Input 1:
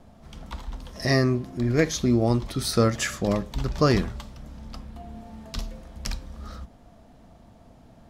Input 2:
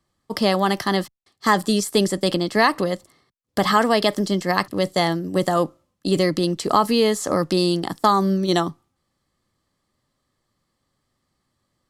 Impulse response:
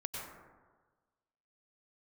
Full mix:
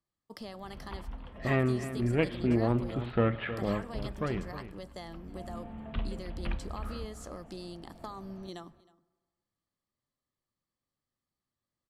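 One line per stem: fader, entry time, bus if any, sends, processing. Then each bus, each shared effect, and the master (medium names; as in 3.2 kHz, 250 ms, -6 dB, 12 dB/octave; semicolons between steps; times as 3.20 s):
3.59 s -6.5 dB -> 4.20 s -13.5 dB -> 5.01 s -13.5 dB -> 5.55 s -2 dB, 0.40 s, send -18.5 dB, echo send -11.5 dB, self-modulated delay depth 0.19 ms; steep low-pass 3.2 kHz 48 dB/octave
-19.0 dB, 0.00 s, send -21 dB, echo send -22.5 dB, compression 3:1, threshold -23 dBFS, peak gain reduction 9.5 dB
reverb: on, RT60 1.4 s, pre-delay 88 ms
echo: delay 314 ms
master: none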